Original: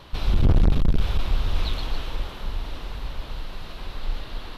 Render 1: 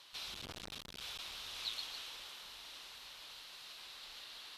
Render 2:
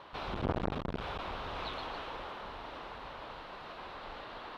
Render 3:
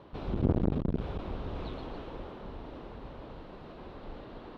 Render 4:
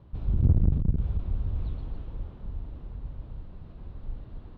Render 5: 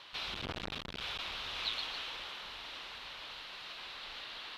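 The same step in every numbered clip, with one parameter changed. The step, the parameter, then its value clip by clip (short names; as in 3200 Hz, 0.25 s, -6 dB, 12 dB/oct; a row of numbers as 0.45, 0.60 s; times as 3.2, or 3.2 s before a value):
band-pass, frequency: 7900, 940, 350, 100, 3000 Hz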